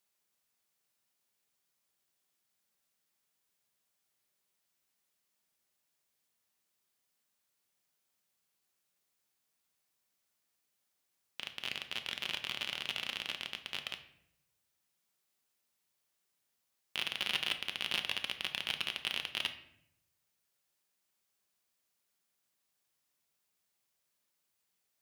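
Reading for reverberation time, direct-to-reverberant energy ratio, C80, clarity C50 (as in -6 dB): 0.75 s, 6.5 dB, 15.0 dB, 11.5 dB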